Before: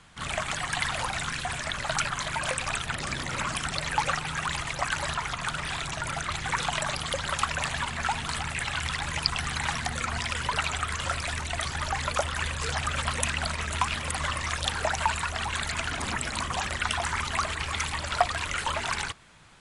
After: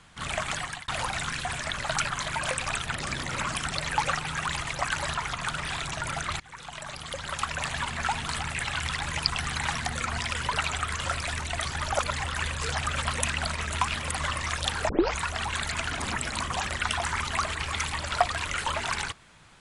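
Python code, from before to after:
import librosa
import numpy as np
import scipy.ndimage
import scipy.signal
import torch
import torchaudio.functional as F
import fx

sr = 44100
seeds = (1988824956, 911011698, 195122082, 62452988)

y = fx.edit(x, sr, fx.fade_out_span(start_s=0.57, length_s=0.31),
    fx.fade_in_from(start_s=6.4, length_s=1.5, floor_db=-23.0),
    fx.reverse_span(start_s=11.94, length_s=0.3),
    fx.tape_start(start_s=14.89, length_s=0.3), tone=tone)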